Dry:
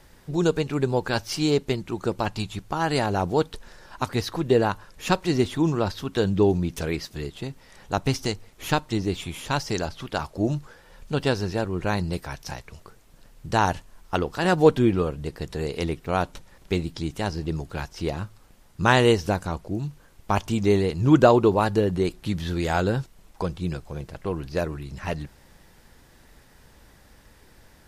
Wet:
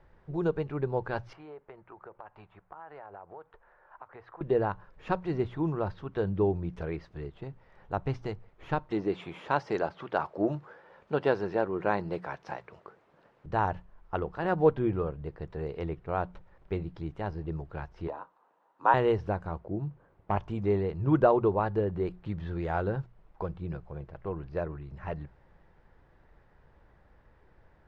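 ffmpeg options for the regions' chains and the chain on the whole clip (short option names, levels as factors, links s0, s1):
-filter_complex "[0:a]asettb=1/sr,asplit=3[s0][s1][s2];[s0]atrim=end=1.334[s3];[s1]atrim=start=1.33:end=4.41,asetpts=PTS-STARTPTS,afade=t=in:d=0.004:c=qsin,afade=t=out:st=3.076:d=0.004:c=qsin,acrossover=split=520 2200:gain=0.126 1 0.0891[s4][s5][s6];[s4][s5][s6]amix=inputs=3:normalize=0,acompressor=threshold=0.0158:ratio=5:attack=3.2:release=140:knee=1:detection=peak[s7];[s2]atrim=start=4.406[s8];[s3][s7]acrossfade=d=0.004:c1=hsin:c2=qsin[s9];[s9][s8]acrossfade=d=0.004:c1=qsin:c2=hsin,asettb=1/sr,asplit=3[s10][s11][s12];[s10]atrim=end=8.914[s13];[s11]atrim=start=8.91:end=13.46,asetpts=PTS-STARTPTS,afade=t=in:d=0.004:c=qsin,afade=t=out:st=4.546:d=0.004:c=qsin,acontrast=67,highpass=240[s14];[s12]atrim=start=13.456[s15];[s13][s14]acrossfade=d=0.004:c1=hsin:c2=qsin[s16];[s16][s15]acrossfade=d=0.004:c1=qsin:c2=hsin,asettb=1/sr,asplit=3[s17][s18][s19];[s17]atrim=end=18.074[s20];[s18]atrim=start=18.07:end=18.94,asetpts=PTS-STARTPTS,afade=t=in:d=0.004:c=qsin,afade=t=out:st=0.866:d=0.004:c=qsin,afreqshift=-53,highpass=f=280:w=0.5412,highpass=f=280:w=1.3066,equalizer=f=380:t=q:w=4:g=-6,equalizer=f=950:t=q:w=4:g=10,equalizer=f=2200:t=q:w=4:g=-8,equalizer=f=3300:t=q:w=4:g=-4,equalizer=f=4900:t=q:w=4:g=-9,lowpass=f=7300:w=0.5412,lowpass=f=7300:w=1.3066[s21];[s19]atrim=start=18.936[s22];[s20][s21]acrossfade=d=0.004:c1=hsin:c2=qsin[s23];[s23][s22]acrossfade=d=0.004:c1=qsin:c2=hsin,asettb=1/sr,asplit=3[s24][s25][s26];[s24]atrim=end=19.604[s27];[s25]atrim=start=19.6:end=20.36,asetpts=PTS-STARTPTS,afade=t=in:d=0.004:c=qsin,afade=t=out:st=0.756:d=0.004:c=qsin,highpass=f=150:p=1,tiltshelf=f=1400:g=5.5,asoftclip=type=hard:threshold=0.224[s28];[s26]atrim=start=20.356[s29];[s27][s28]acrossfade=d=0.004:c1=hsin:c2=qsin[s30];[s30][s29]acrossfade=d=0.004:c1=qsin:c2=hsin,lowpass=1500,equalizer=f=250:w=2.9:g=-8,bandreject=f=60:t=h:w=6,bandreject=f=120:t=h:w=6,bandreject=f=180:t=h:w=6,volume=0.531"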